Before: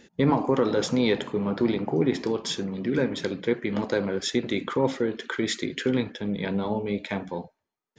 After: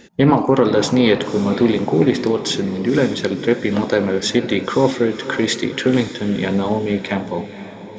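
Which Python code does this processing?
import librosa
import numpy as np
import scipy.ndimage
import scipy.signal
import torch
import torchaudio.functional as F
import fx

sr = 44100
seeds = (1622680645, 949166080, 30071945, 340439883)

y = fx.echo_diffused(x, sr, ms=536, feedback_pct=49, wet_db=-13)
y = fx.doppler_dist(y, sr, depth_ms=0.11)
y = F.gain(torch.from_numpy(y), 8.5).numpy()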